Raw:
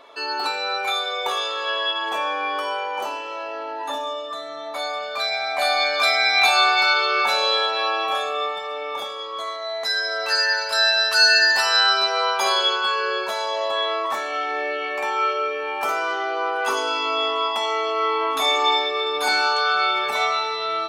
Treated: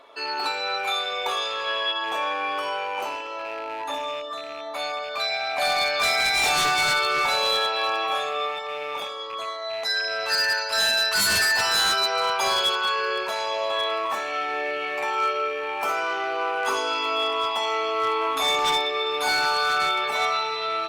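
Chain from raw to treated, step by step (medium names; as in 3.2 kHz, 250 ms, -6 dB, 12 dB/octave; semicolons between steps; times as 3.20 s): rattle on loud lows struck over -47 dBFS, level -26 dBFS; wavefolder -14 dBFS; trim -2 dB; Opus 32 kbps 48 kHz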